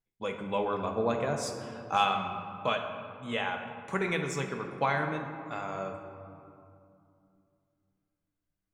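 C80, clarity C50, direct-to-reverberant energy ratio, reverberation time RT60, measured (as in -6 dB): 7.0 dB, 6.0 dB, 3.5 dB, 2.7 s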